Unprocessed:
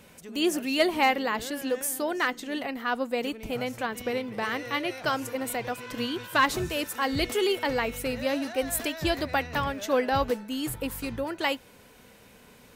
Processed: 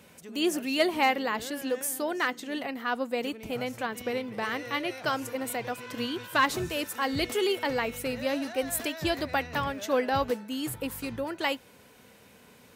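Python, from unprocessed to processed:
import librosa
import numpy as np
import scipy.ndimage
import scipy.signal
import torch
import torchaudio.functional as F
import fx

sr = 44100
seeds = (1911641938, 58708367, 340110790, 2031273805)

y = scipy.signal.sosfilt(scipy.signal.butter(2, 73.0, 'highpass', fs=sr, output='sos'), x)
y = y * librosa.db_to_amplitude(-1.5)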